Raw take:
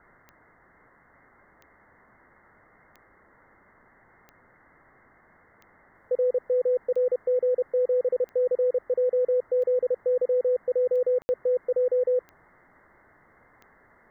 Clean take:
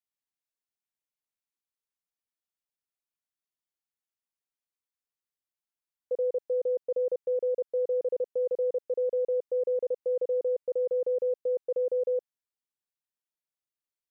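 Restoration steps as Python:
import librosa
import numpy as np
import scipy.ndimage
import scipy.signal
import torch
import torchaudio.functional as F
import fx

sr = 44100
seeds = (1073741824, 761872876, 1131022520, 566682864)

y = fx.fix_declick_ar(x, sr, threshold=10.0)
y = fx.fix_ambience(y, sr, seeds[0], print_start_s=0.55, print_end_s=1.05, start_s=11.22, end_s=11.29)
y = fx.noise_reduce(y, sr, print_start_s=0.55, print_end_s=1.05, reduce_db=30.0)
y = fx.fix_level(y, sr, at_s=5.95, step_db=-4.5)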